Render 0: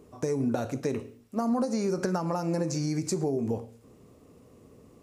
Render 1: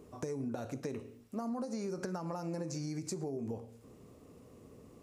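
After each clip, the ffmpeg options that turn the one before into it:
-af "acompressor=threshold=-38dB:ratio=2.5,volume=-1.5dB"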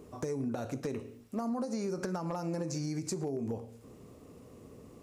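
-af "asoftclip=type=hard:threshold=-30dB,volume=3.5dB"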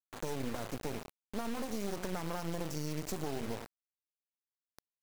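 -af "acrusher=bits=4:dc=4:mix=0:aa=0.000001"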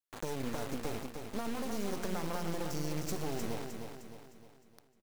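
-af "aecho=1:1:307|614|921|1228|1535|1842:0.501|0.231|0.106|0.0488|0.0224|0.0103"

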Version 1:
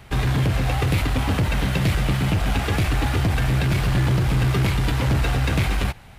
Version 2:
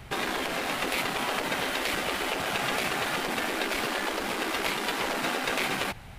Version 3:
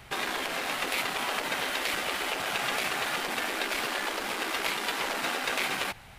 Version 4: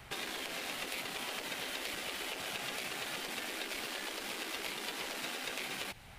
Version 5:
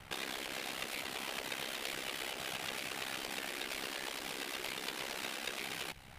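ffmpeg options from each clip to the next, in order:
-af "afftfilt=real='re*lt(hypot(re,im),0.224)':imag='im*lt(hypot(re,im),0.224)':win_size=1024:overlap=0.75"
-af "lowshelf=f=470:g=-8"
-filter_complex "[0:a]acrossover=split=630|2100[a][b][c];[a]acompressor=threshold=-43dB:ratio=4[d];[b]acompressor=threshold=-48dB:ratio=4[e];[c]acompressor=threshold=-36dB:ratio=4[f];[d][e][f]amix=inputs=3:normalize=0,volume=-3dB"
-af "aeval=exprs='val(0)*sin(2*PI*33*n/s)':c=same,volume=2dB"

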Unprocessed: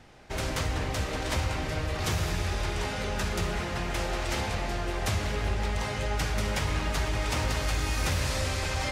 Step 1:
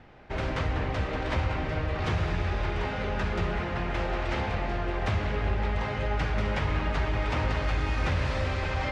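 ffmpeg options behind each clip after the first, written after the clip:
-af "lowpass=2.6k,volume=1.5dB"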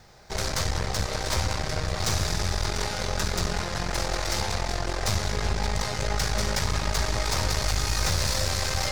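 -af "equalizer=f=280:t=o:w=0.38:g=-13,aexciter=amount=8.9:drive=7.6:freq=4.3k,aeval=exprs='0.211*(cos(1*acos(clip(val(0)/0.211,-1,1)))-cos(1*PI/2))+0.0266*(cos(8*acos(clip(val(0)/0.211,-1,1)))-cos(8*PI/2))':c=same"

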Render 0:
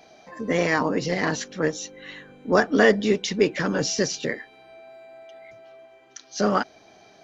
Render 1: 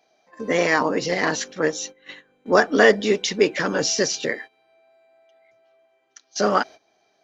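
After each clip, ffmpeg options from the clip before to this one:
-af "agate=range=-16dB:threshold=-39dB:ratio=16:detection=peak,bass=f=250:g=-9,treble=f=4k:g=1,volume=3.5dB"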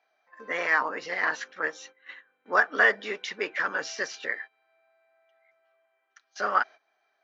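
-af "bandpass=f=1.5k:t=q:w=1.7:csg=0"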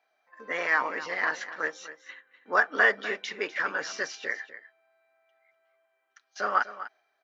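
-af "aecho=1:1:248:0.2,volume=-1dB"

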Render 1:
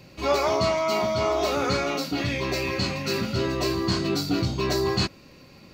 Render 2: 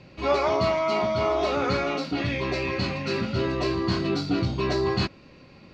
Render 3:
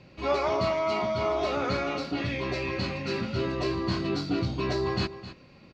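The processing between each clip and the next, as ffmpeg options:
-af "lowpass=3.8k"
-af "aecho=1:1:261:0.2,volume=-3.5dB"

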